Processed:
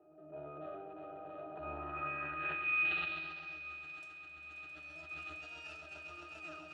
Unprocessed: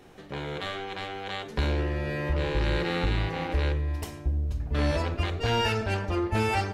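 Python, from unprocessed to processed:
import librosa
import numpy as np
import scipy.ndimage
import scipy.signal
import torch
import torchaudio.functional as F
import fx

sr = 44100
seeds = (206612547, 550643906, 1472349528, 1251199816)

p1 = fx.tape_stop_end(x, sr, length_s=0.35)
p2 = fx.level_steps(p1, sr, step_db=16)
p3 = p1 + (p2 * librosa.db_to_amplitude(0.0))
p4 = scipy.signal.sosfilt(scipy.signal.butter(2, 97.0, 'highpass', fs=sr, output='sos'), p3)
p5 = fx.low_shelf(p4, sr, hz=390.0, db=-8.5)
p6 = fx.octave_resonator(p5, sr, note='D#', decay_s=0.33)
p7 = fx.echo_swell(p6, sr, ms=133, loudest=8, wet_db=-10.0)
p8 = fx.transient(p7, sr, attack_db=-6, sustain_db=7)
p9 = fx.filter_sweep_bandpass(p8, sr, from_hz=570.0, to_hz=7600.0, start_s=1.32, end_s=3.81, q=2.0)
p10 = fx.sustainer(p9, sr, db_per_s=29.0)
y = p10 * librosa.db_to_amplitude(16.0)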